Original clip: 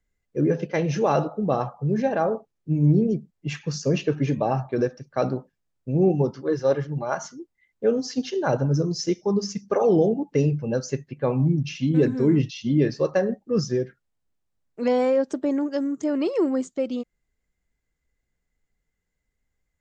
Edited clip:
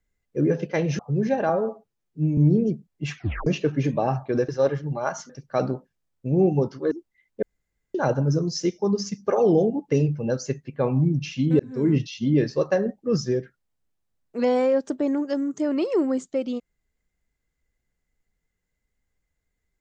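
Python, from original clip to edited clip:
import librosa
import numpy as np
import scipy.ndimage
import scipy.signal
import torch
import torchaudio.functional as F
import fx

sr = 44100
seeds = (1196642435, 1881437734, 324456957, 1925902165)

y = fx.edit(x, sr, fx.cut(start_s=0.99, length_s=0.73),
    fx.stretch_span(start_s=2.22, length_s=0.59, factor=1.5),
    fx.tape_stop(start_s=3.6, length_s=0.3),
    fx.move(start_s=6.54, length_s=0.81, to_s=4.92),
    fx.room_tone_fill(start_s=7.86, length_s=0.52),
    fx.fade_in_span(start_s=12.03, length_s=0.34), tone=tone)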